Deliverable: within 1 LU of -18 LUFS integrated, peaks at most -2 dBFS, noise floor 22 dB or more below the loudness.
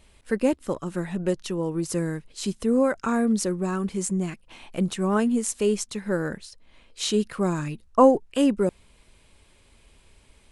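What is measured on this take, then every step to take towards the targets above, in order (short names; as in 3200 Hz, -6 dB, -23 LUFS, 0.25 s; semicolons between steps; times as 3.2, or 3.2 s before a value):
loudness -25.0 LUFS; peak -5.0 dBFS; loudness target -18.0 LUFS
-> gain +7 dB; limiter -2 dBFS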